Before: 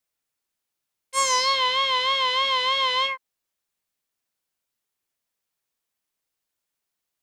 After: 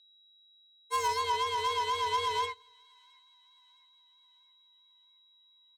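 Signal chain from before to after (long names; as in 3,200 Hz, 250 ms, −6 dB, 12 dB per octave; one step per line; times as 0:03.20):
inverse Chebyshev high-pass filter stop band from 200 Hz, stop band 40 dB
parametric band 640 Hz +11 dB 2.5 octaves
steady tone 3,800 Hz −33 dBFS
soft clipping −17.5 dBFS, distortion −9 dB
frequency shifter −88 Hz
tempo change 1.2×
echo with a time of its own for lows and highs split 980 Hz, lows 126 ms, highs 692 ms, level −14 dB
wrong playback speed 24 fps film run at 25 fps
expander for the loud parts 2.5 to 1, over −32 dBFS
level −7 dB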